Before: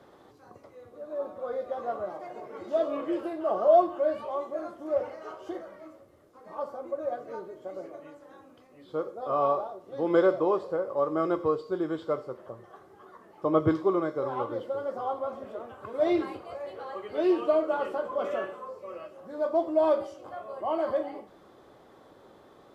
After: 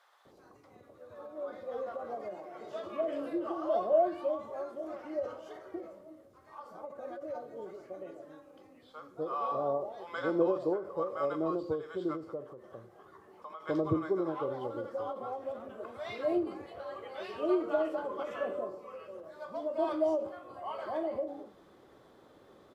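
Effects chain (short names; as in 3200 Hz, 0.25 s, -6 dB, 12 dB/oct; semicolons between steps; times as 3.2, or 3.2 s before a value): 1.9–2.35 HPF 160 Hz; bands offset in time highs, lows 0.25 s, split 830 Hz; ending taper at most 130 dB/s; gain -3 dB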